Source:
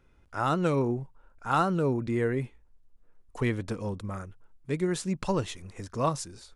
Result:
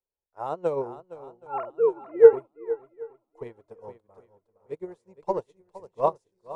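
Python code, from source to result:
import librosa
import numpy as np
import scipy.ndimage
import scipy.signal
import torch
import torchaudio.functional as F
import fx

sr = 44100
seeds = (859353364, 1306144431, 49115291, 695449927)

y = fx.sine_speech(x, sr, at=(1.47, 2.33))
y = fx.band_shelf(y, sr, hz=630.0, db=15.5, octaves=1.7)
y = fx.echo_swing(y, sr, ms=773, ratio=1.5, feedback_pct=38, wet_db=-6.5)
y = fx.upward_expand(y, sr, threshold_db=-31.0, expansion=2.5)
y = y * 10.0 ** (-1.0 / 20.0)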